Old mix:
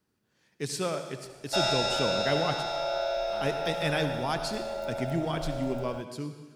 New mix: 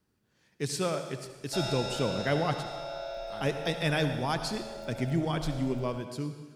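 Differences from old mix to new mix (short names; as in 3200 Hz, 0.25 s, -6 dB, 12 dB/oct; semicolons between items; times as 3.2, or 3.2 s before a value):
background -8.5 dB; master: add low shelf 100 Hz +8 dB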